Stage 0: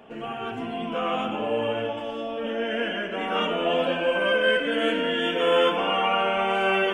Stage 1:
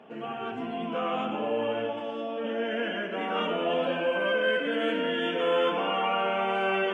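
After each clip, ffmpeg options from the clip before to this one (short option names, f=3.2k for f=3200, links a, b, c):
-filter_complex "[0:a]highpass=f=130:w=0.5412,highpass=f=130:w=1.3066,aemphasis=mode=reproduction:type=50kf,asplit=2[a][b];[b]alimiter=limit=-19dB:level=0:latency=1,volume=-2dB[c];[a][c]amix=inputs=2:normalize=0,volume=-7dB"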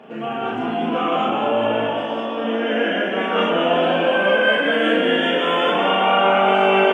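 -filter_complex "[0:a]asplit=2[a][b];[b]adelay=36,volume=-3dB[c];[a][c]amix=inputs=2:normalize=0,asplit=2[d][e];[e]asplit=7[f][g][h][i][j][k][l];[f]adelay=204,afreqshift=50,volume=-6.5dB[m];[g]adelay=408,afreqshift=100,volume=-11.7dB[n];[h]adelay=612,afreqshift=150,volume=-16.9dB[o];[i]adelay=816,afreqshift=200,volume=-22.1dB[p];[j]adelay=1020,afreqshift=250,volume=-27.3dB[q];[k]adelay=1224,afreqshift=300,volume=-32.5dB[r];[l]adelay=1428,afreqshift=350,volume=-37.7dB[s];[m][n][o][p][q][r][s]amix=inputs=7:normalize=0[t];[d][t]amix=inputs=2:normalize=0,volume=7.5dB"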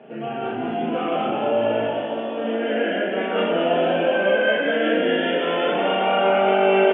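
-af "highpass=110,equalizer=f=130:t=q:w=4:g=10,equalizer=f=380:t=q:w=4:g=4,equalizer=f=610:t=q:w=4:g=4,equalizer=f=1.1k:t=q:w=4:g=-8,lowpass=f=3.2k:w=0.5412,lowpass=f=3.2k:w=1.3066,volume=-3.5dB"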